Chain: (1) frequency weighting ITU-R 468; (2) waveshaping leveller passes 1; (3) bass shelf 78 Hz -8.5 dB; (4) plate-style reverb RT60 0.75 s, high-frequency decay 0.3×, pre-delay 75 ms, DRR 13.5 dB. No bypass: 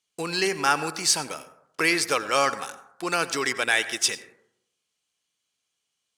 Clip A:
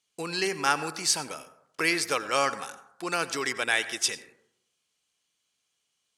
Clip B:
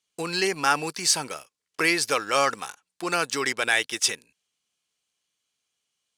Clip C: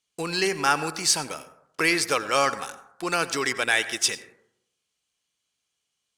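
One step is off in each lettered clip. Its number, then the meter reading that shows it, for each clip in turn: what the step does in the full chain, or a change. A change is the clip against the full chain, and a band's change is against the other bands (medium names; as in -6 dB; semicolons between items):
2, crest factor change +3.5 dB; 4, momentary loudness spread change +2 LU; 3, 125 Hz band +1.5 dB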